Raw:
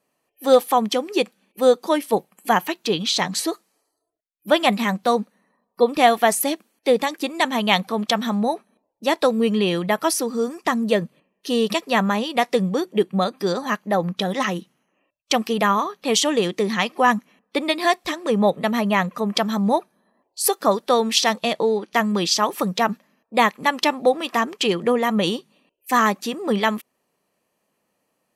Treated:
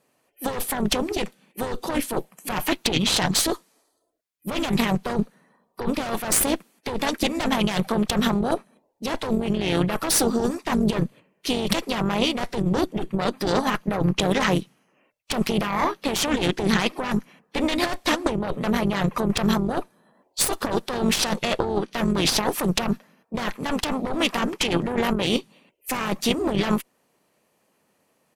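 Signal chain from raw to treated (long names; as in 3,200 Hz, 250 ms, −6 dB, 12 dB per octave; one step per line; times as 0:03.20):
pitch-shifted copies added −5 semitones −16 dB, −4 semitones −9 dB, −3 semitones −10 dB
harmonic generator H 5 −17 dB, 6 −8 dB, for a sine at −0.5 dBFS
compressor whose output falls as the input rises −18 dBFS, ratio −1
level −5 dB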